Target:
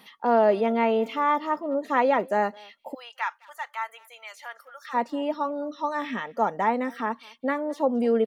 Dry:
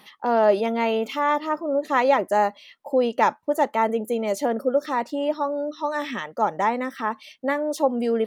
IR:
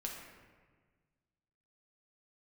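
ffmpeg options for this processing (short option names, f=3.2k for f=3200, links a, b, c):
-filter_complex "[0:a]aecho=1:1:4.3:0.35,asplit=2[a][b];[b]adelay=210,highpass=300,lowpass=3.4k,asoftclip=type=hard:threshold=-14.5dB,volume=-24dB[c];[a][c]amix=inputs=2:normalize=0,acrossover=split=3100[d][e];[e]acompressor=threshold=-50dB:ratio=4:attack=1:release=60[f];[d][f]amix=inputs=2:normalize=0,asplit=3[g][h][i];[g]afade=t=out:st=2.93:d=0.02[j];[h]highpass=f=1.2k:w=0.5412,highpass=f=1.2k:w=1.3066,afade=t=in:st=2.93:d=0.02,afade=t=out:st=4.93:d=0.02[k];[i]afade=t=in:st=4.93:d=0.02[l];[j][k][l]amix=inputs=3:normalize=0,volume=-2dB"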